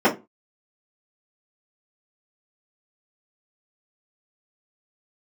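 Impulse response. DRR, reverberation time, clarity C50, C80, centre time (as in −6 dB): −9.5 dB, 0.25 s, 13.5 dB, 22.0 dB, 16 ms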